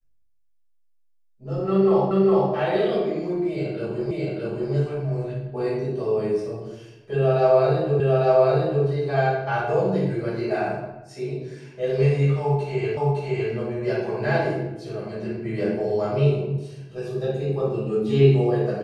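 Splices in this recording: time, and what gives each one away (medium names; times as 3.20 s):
2.11 s: repeat of the last 0.41 s
4.11 s: repeat of the last 0.62 s
8.00 s: repeat of the last 0.85 s
12.97 s: repeat of the last 0.56 s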